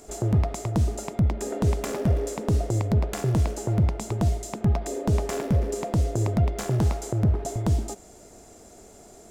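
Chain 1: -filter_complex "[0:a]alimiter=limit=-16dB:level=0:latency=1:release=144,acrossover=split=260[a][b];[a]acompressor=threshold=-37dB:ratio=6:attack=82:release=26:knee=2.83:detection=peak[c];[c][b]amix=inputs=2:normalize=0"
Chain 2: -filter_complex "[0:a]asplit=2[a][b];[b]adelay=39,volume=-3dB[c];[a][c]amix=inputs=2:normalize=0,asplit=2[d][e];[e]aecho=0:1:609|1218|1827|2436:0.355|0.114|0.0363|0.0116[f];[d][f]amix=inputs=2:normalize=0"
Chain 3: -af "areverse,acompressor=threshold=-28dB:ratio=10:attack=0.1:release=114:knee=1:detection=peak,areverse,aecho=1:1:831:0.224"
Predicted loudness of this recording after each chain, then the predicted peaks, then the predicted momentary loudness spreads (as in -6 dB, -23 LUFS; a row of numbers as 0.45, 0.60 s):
-31.5, -23.5, -34.5 LUFS; -15.0, -8.0, -25.0 dBFS; 18, 11, 11 LU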